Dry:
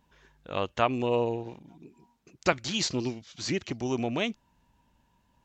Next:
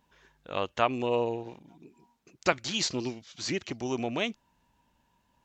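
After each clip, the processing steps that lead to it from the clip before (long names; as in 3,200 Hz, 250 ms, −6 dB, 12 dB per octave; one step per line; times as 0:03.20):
low-shelf EQ 220 Hz −6 dB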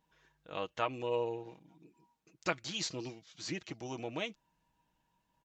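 comb filter 6.3 ms, depth 50%
level −8.5 dB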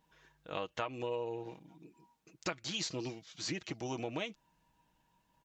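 downward compressor 5 to 1, threshold −38 dBFS, peak gain reduction 11 dB
level +4 dB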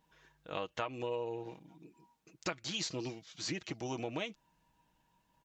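no processing that can be heard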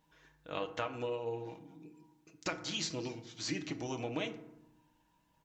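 feedback delay network reverb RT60 0.85 s, low-frequency decay 1.5×, high-frequency decay 0.45×, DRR 7.5 dB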